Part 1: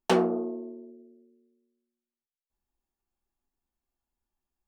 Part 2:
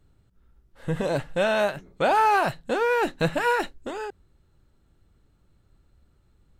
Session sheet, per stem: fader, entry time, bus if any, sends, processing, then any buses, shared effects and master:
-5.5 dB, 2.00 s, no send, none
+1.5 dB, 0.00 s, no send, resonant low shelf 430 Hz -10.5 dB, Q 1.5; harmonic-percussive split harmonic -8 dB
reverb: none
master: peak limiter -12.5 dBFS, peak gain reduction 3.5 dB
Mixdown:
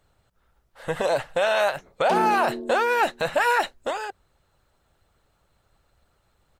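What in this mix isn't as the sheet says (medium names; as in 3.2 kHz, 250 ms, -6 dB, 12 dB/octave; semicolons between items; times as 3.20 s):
stem 1 -5.5 dB -> +4.0 dB; stem 2 +1.5 dB -> +8.5 dB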